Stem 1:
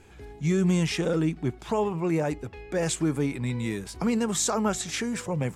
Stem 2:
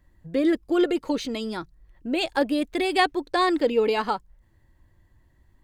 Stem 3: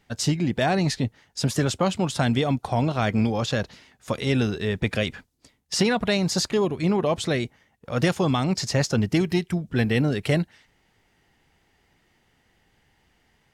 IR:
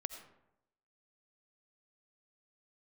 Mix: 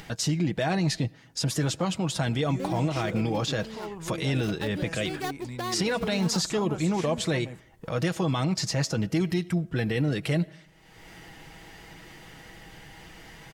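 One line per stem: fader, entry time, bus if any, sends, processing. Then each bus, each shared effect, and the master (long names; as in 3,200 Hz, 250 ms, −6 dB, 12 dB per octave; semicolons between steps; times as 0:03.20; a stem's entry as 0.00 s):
−9.5 dB, 2.05 s, no bus, no send, brickwall limiter −20 dBFS, peak gain reduction 5 dB
−11.5 dB, 2.25 s, bus A, no send, gap after every zero crossing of 0.15 ms
−2.5 dB, 0.00 s, bus A, send −16 dB, comb filter 6.2 ms, depth 50%
bus A: 0.0 dB, upward compression, threshold −30 dBFS; brickwall limiter −19.5 dBFS, peak gain reduction 10 dB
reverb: on, RT60 0.85 s, pre-delay 45 ms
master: no processing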